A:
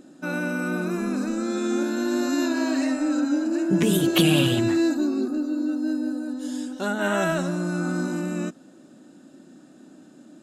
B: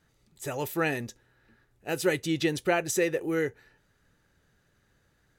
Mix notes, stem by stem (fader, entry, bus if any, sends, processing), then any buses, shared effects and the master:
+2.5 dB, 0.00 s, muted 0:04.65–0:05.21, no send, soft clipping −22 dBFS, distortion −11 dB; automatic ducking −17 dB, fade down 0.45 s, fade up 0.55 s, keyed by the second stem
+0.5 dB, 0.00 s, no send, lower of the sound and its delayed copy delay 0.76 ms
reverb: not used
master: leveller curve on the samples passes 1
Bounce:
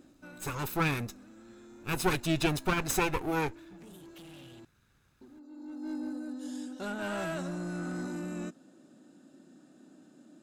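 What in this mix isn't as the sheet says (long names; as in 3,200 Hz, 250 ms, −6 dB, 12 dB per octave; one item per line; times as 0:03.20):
stem A +2.5 dB → −8.0 dB
master: missing leveller curve on the samples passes 1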